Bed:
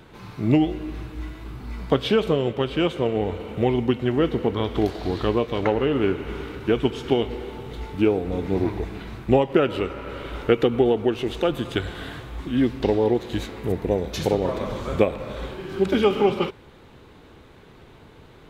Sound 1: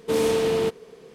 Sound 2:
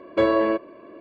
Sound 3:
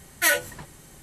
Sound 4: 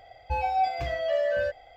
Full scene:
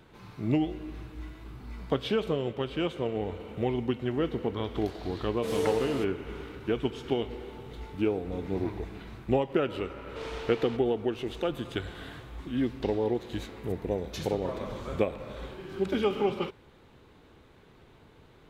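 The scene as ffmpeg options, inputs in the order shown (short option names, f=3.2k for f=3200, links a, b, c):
-filter_complex "[1:a]asplit=2[a][b];[0:a]volume=-8dB[c];[a]asplit=2[d][e];[e]adelay=5.3,afreqshift=-1.8[f];[d][f]amix=inputs=2:normalize=1[g];[b]highpass=700,lowpass=4k[h];[g]atrim=end=1.14,asetpts=PTS-STARTPTS,volume=-6.5dB,afade=t=in:d=0.004:c=hsin,afade=t=out:st=1.136:d=0.004:c=hsin,adelay=5340[i];[h]atrim=end=1.14,asetpts=PTS-STARTPTS,volume=-10.5dB,afade=t=in:d=0.004:c=hsin,afade=t=out:st=1.136:d=0.004:c=hsin,adelay=10070[j];[c][i][j]amix=inputs=3:normalize=0"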